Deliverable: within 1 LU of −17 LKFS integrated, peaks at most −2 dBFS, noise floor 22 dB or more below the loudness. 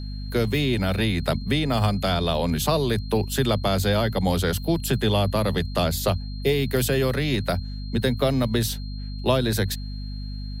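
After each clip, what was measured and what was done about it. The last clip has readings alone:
mains hum 50 Hz; hum harmonics up to 250 Hz; level of the hum −29 dBFS; interfering tone 4,200 Hz; level of the tone −44 dBFS; integrated loudness −24.0 LKFS; sample peak −8.5 dBFS; target loudness −17.0 LKFS
→ mains-hum notches 50/100/150/200/250 Hz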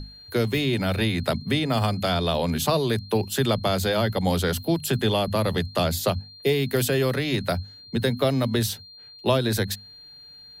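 mains hum none found; interfering tone 4,200 Hz; level of the tone −44 dBFS
→ notch filter 4,200 Hz, Q 30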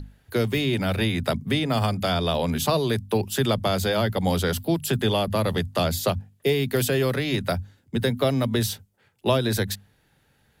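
interfering tone none found; integrated loudness −24.5 LKFS; sample peak −8.5 dBFS; target loudness −17.0 LKFS
→ level +7.5 dB
brickwall limiter −2 dBFS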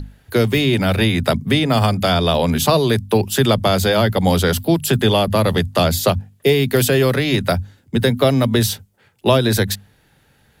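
integrated loudness −17.0 LKFS; sample peak −2.0 dBFS; background noise floor −57 dBFS

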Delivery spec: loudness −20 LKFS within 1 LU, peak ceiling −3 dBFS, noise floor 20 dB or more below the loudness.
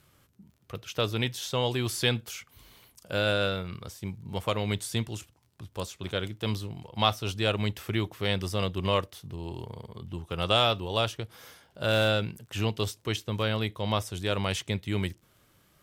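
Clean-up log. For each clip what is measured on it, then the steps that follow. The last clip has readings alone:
crackle rate 38 per second; integrated loudness −29.5 LKFS; sample peak −8.5 dBFS; target loudness −20.0 LKFS
→ click removal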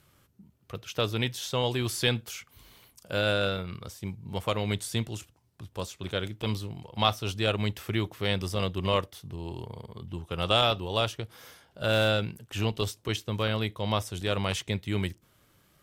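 crackle rate 0.19 per second; integrated loudness −30.0 LKFS; sample peak −8.5 dBFS; target loudness −20.0 LKFS
→ level +10 dB
brickwall limiter −3 dBFS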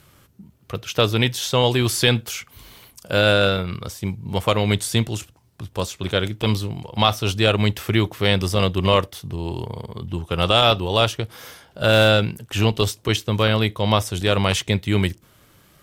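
integrated loudness −20.5 LKFS; sample peak −3.0 dBFS; background noise floor −56 dBFS

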